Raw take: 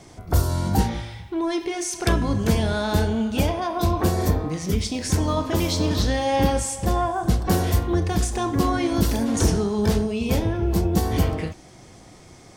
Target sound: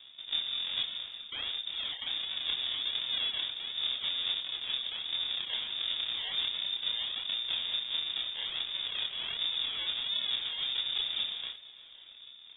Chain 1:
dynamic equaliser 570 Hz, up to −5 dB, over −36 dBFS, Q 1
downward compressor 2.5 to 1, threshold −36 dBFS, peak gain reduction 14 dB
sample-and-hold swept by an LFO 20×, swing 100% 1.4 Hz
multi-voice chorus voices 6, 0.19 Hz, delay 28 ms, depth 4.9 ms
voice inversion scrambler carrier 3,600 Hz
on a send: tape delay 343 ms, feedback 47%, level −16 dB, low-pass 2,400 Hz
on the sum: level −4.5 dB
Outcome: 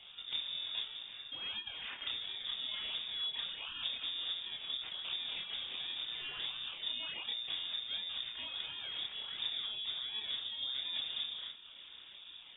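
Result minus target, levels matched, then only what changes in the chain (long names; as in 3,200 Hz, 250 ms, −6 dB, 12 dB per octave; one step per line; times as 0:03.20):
sample-and-hold swept by an LFO: distortion −9 dB; downward compressor: peak gain reduction +5.5 dB
change: downward compressor 2.5 to 1, threshold −26.5 dBFS, peak gain reduction 8.5 dB
change: sample-and-hold swept by an LFO 75×, swing 100% 1.4 Hz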